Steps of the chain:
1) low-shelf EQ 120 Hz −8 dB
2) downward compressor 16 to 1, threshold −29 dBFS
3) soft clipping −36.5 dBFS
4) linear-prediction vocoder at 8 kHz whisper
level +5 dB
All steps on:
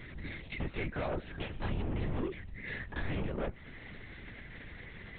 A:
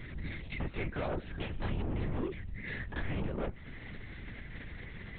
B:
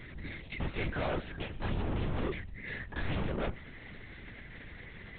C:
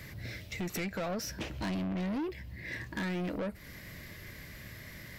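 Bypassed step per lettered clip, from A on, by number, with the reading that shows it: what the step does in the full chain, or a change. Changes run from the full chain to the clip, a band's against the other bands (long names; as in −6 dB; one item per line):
1, change in momentary loudness spread −2 LU
2, average gain reduction 4.0 dB
4, 250 Hz band +4.0 dB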